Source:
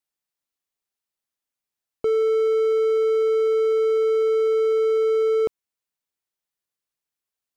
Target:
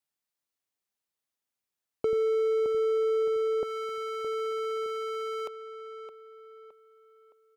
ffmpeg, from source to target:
-filter_complex "[0:a]asetnsamples=n=441:p=0,asendcmd='2.13 highpass f 190;3.63 highpass f 940',highpass=47,acompressor=threshold=0.0631:ratio=3,asplit=2[s0][s1];[s1]adelay=616,lowpass=f=2400:p=1,volume=0.376,asplit=2[s2][s3];[s3]adelay=616,lowpass=f=2400:p=1,volume=0.43,asplit=2[s4][s5];[s5]adelay=616,lowpass=f=2400:p=1,volume=0.43,asplit=2[s6][s7];[s7]adelay=616,lowpass=f=2400:p=1,volume=0.43,asplit=2[s8][s9];[s9]adelay=616,lowpass=f=2400:p=1,volume=0.43[s10];[s0][s2][s4][s6][s8][s10]amix=inputs=6:normalize=0,volume=0.841"

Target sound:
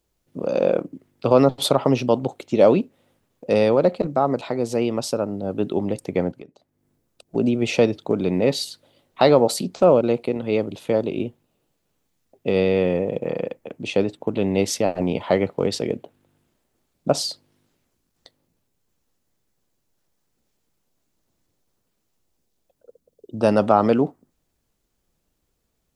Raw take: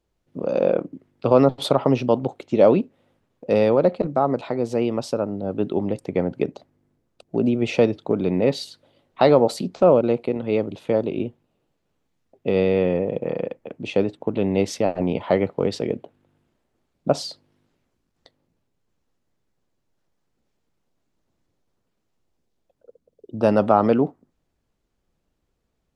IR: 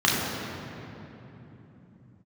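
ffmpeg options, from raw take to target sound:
-filter_complex "[0:a]crystalizer=i=2:c=0,asettb=1/sr,asplit=3[s0][s1][s2];[s0]atrim=end=6.314[s3];[s1]atrim=start=6.31:end=7.35,asetpts=PTS-STARTPTS,afade=t=in:d=0.004:c=qsin,afade=t=out:st=1.036:d=0.004:c=qsin,acompressor=threshold=0.00562:ratio=3[s4];[s2]atrim=start=7.346[s5];[s3][s4]acrossfade=d=0.004:c1=hsin:c2=qsin[s6];[s6][s5]acrossfade=d=0.004:c1=qsin:c2=hsin"

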